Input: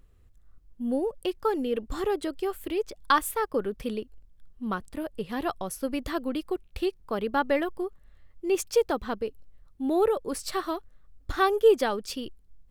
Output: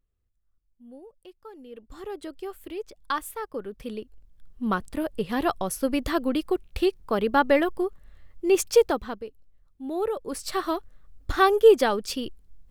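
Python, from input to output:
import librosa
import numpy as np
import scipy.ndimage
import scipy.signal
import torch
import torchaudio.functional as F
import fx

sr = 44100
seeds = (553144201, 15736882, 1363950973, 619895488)

y = fx.gain(x, sr, db=fx.line((1.5, -18.5), (2.26, -6.0), (3.64, -6.0), (4.65, 5.0), (8.83, 5.0), (9.26, -6.5), (9.83, -6.5), (10.73, 4.0)))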